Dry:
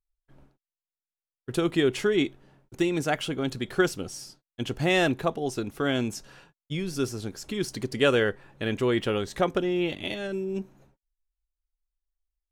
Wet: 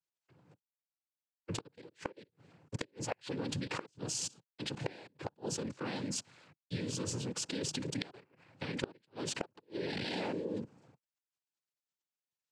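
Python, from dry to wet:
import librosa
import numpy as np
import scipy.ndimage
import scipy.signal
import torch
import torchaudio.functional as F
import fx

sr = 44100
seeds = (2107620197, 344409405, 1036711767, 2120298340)

y = np.minimum(x, 2.0 * 10.0 ** (-16.5 / 20.0) - x)
y = fx.level_steps(y, sr, step_db=23)
y = fx.vibrato(y, sr, rate_hz=2.4, depth_cents=47.0)
y = fx.noise_vocoder(y, sr, seeds[0], bands=8)
y = fx.gate_flip(y, sr, shuts_db=-31.0, range_db=-37)
y = y * 10.0 ** (9.0 / 20.0)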